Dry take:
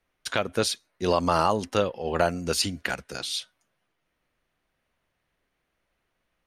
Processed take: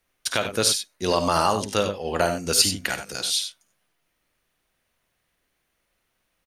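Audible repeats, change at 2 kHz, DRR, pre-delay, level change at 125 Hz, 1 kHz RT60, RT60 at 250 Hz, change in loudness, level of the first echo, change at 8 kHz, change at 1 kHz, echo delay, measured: 2, +2.5 dB, no reverb audible, no reverb audible, +0.5 dB, no reverb audible, no reverb audible, +3.5 dB, −13.0 dB, +9.5 dB, +1.5 dB, 53 ms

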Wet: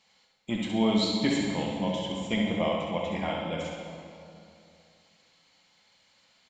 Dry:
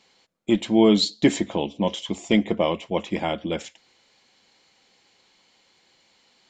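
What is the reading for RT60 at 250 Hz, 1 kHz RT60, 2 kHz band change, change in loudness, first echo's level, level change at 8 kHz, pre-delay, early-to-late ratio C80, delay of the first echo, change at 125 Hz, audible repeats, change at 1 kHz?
2.7 s, 2.6 s, −3.0 dB, −6.0 dB, −5.5 dB, −6.5 dB, 8 ms, 2.5 dB, 67 ms, −3.0 dB, 2, −3.5 dB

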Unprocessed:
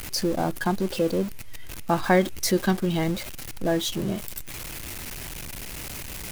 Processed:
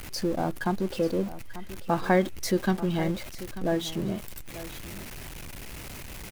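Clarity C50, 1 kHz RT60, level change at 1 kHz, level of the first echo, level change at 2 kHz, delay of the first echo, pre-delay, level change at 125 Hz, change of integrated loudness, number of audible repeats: no reverb audible, no reverb audible, −2.5 dB, −15.0 dB, −3.5 dB, 889 ms, no reverb audible, −2.5 dB, −2.0 dB, 1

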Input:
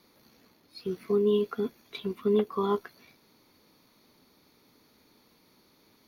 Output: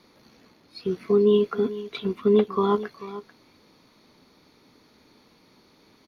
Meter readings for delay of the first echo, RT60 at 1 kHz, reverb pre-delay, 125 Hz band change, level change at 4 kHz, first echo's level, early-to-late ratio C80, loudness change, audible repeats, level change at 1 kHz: 440 ms, no reverb audible, no reverb audible, +6.0 dB, +5.0 dB, −15.0 dB, no reverb audible, +6.0 dB, 1, +6.0 dB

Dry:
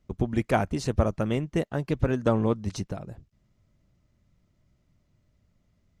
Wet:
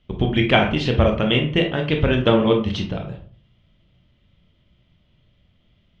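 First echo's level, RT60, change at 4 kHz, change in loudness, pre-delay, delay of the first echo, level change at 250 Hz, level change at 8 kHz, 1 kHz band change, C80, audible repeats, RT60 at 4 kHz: no echo audible, 0.45 s, +19.5 dB, +8.0 dB, 21 ms, no echo audible, +7.5 dB, can't be measured, +7.0 dB, 13.0 dB, no echo audible, 0.30 s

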